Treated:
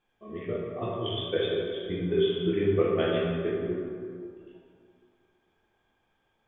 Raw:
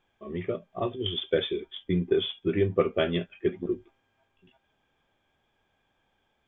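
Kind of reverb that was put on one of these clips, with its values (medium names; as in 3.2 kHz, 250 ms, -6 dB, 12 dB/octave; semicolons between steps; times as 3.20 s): plate-style reverb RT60 2.2 s, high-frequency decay 0.55×, DRR -5 dB; trim -6.5 dB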